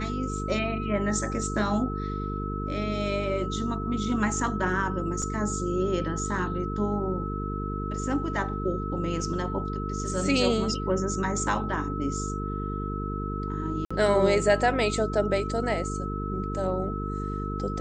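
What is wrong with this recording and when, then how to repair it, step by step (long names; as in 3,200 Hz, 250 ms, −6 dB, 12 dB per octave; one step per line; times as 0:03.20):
mains buzz 50 Hz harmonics 9 −32 dBFS
whistle 1,300 Hz −35 dBFS
0:05.22: drop-out 3.5 ms
0:13.85–0:13.90: drop-out 55 ms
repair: notch filter 1,300 Hz, Q 30
hum removal 50 Hz, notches 9
repair the gap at 0:05.22, 3.5 ms
repair the gap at 0:13.85, 55 ms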